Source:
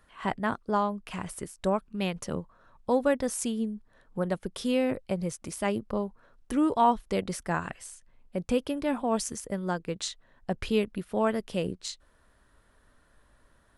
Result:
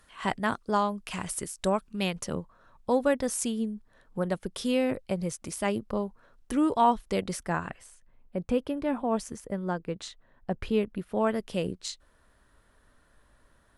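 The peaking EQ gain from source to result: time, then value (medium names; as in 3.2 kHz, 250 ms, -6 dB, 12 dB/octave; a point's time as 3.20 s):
peaking EQ 7.7 kHz 2.7 oct
1.90 s +8.5 dB
2.35 s +2 dB
7.31 s +2 dB
7.87 s -9 dB
10.81 s -9 dB
11.52 s +0.5 dB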